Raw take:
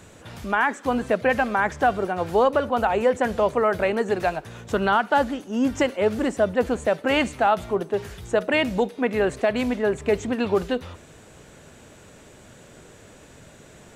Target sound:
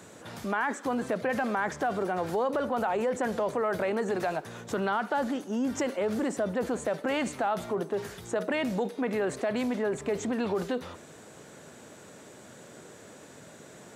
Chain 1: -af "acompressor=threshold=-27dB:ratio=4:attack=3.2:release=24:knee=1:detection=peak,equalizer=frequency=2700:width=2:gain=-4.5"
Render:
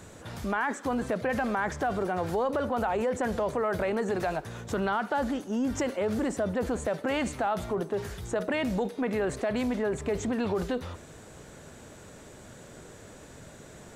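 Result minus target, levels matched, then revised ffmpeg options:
125 Hz band +3.5 dB
-af "acompressor=threshold=-27dB:ratio=4:attack=3.2:release=24:knee=1:detection=peak,highpass=160,equalizer=frequency=2700:width=2:gain=-4.5"

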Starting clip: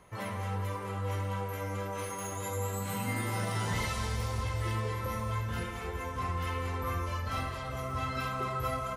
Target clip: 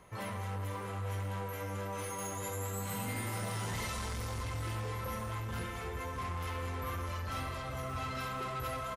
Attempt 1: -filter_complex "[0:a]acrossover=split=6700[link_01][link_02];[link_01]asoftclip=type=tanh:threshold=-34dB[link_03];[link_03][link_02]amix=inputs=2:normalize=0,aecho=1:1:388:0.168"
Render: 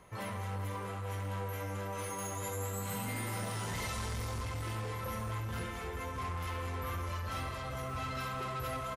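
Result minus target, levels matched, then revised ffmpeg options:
echo 189 ms early
-filter_complex "[0:a]acrossover=split=6700[link_01][link_02];[link_01]asoftclip=type=tanh:threshold=-34dB[link_03];[link_03][link_02]amix=inputs=2:normalize=0,aecho=1:1:577:0.168"

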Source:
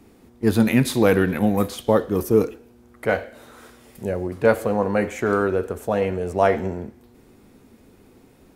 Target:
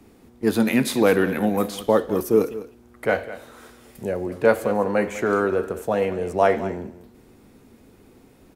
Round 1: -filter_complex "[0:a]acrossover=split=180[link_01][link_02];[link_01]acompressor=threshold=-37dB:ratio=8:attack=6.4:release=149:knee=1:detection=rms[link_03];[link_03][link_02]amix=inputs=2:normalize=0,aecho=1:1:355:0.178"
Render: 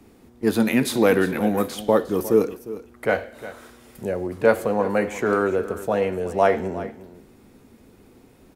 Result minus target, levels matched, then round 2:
echo 152 ms late
-filter_complex "[0:a]acrossover=split=180[link_01][link_02];[link_01]acompressor=threshold=-37dB:ratio=8:attack=6.4:release=149:knee=1:detection=rms[link_03];[link_03][link_02]amix=inputs=2:normalize=0,aecho=1:1:203:0.178"

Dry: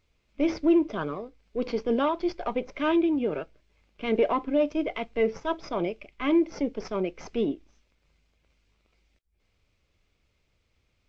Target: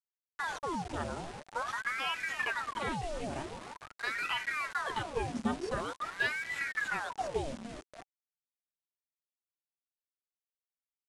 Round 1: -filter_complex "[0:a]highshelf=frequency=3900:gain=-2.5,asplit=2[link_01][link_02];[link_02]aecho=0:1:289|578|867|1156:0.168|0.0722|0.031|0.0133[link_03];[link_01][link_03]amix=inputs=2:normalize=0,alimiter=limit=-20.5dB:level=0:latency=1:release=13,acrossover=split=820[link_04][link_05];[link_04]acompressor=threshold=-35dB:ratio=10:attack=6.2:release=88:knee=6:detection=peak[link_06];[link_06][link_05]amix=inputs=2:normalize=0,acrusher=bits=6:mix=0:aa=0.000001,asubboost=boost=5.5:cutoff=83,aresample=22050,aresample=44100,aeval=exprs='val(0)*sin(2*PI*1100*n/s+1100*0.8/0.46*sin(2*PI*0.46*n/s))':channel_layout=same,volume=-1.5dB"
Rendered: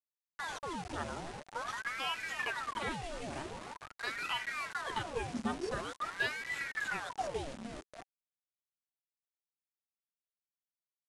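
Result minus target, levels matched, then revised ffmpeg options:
downward compressor: peak gain reduction +6 dB
-filter_complex "[0:a]highshelf=frequency=3900:gain=-2.5,asplit=2[link_01][link_02];[link_02]aecho=0:1:289|578|867|1156:0.168|0.0722|0.031|0.0133[link_03];[link_01][link_03]amix=inputs=2:normalize=0,alimiter=limit=-20.5dB:level=0:latency=1:release=13,acrossover=split=820[link_04][link_05];[link_04]acompressor=threshold=-28.5dB:ratio=10:attack=6.2:release=88:knee=6:detection=peak[link_06];[link_06][link_05]amix=inputs=2:normalize=0,acrusher=bits=6:mix=0:aa=0.000001,asubboost=boost=5.5:cutoff=83,aresample=22050,aresample=44100,aeval=exprs='val(0)*sin(2*PI*1100*n/s+1100*0.8/0.46*sin(2*PI*0.46*n/s))':channel_layout=same,volume=-1.5dB"

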